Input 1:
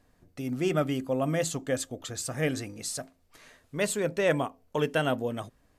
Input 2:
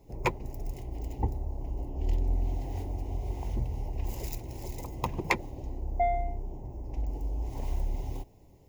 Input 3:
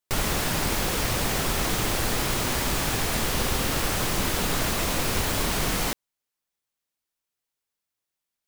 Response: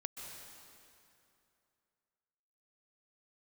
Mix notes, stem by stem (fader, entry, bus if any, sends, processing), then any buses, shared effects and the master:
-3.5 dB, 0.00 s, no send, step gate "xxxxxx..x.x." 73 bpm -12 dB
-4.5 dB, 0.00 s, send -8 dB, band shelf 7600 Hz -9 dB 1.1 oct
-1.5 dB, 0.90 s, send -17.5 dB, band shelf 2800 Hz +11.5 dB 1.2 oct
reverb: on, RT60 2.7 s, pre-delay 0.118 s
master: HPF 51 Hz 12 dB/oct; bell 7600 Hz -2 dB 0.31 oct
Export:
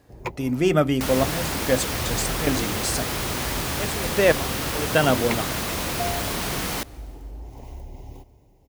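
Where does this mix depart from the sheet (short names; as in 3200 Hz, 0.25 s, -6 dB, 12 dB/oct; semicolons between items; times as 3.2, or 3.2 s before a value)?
stem 1 -3.5 dB -> +7.5 dB; stem 2: missing band shelf 7600 Hz -9 dB 1.1 oct; stem 3: missing band shelf 2800 Hz +11.5 dB 1.2 oct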